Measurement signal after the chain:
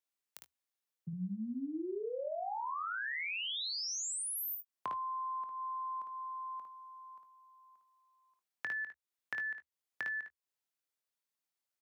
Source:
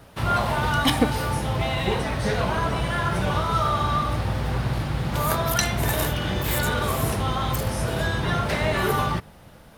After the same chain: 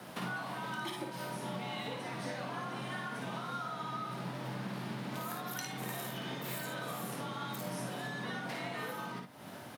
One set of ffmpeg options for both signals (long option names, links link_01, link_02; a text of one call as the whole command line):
ffmpeg -i in.wav -filter_complex "[0:a]lowshelf=frequency=180:gain=-6.5,acompressor=threshold=-40dB:ratio=10,aecho=1:1:55|72:0.596|0.188,afreqshift=72,asplit=2[link_01][link_02];[link_02]adelay=22,volume=-13.5dB[link_03];[link_01][link_03]amix=inputs=2:normalize=0,volume=1dB" out.wav